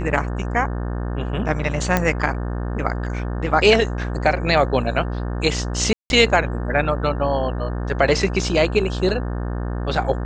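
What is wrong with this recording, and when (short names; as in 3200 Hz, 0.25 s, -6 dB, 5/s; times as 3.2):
buzz 60 Hz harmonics 30 -25 dBFS
1.97 pop -4 dBFS
5.93–6.1 gap 0.171 s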